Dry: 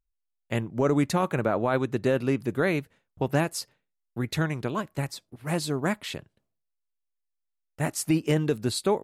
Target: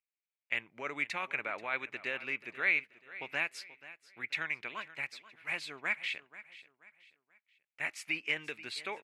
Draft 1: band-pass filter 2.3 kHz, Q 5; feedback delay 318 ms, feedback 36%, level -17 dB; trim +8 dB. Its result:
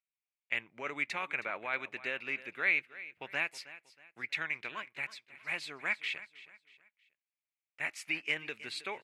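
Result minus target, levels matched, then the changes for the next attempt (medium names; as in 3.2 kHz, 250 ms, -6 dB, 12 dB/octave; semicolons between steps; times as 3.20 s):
echo 165 ms early
change: feedback delay 483 ms, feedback 36%, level -17 dB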